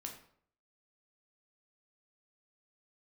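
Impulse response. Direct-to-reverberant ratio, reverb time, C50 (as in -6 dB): 1.5 dB, 0.60 s, 7.5 dB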